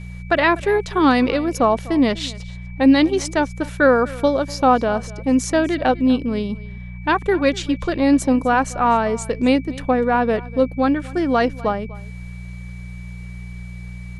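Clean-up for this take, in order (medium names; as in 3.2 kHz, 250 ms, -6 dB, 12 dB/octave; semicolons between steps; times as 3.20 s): de-hum 60.1 Hz, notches 3; band-stop 2.3 kHz, Q 30; inverse comb 247 ms -20.5 dB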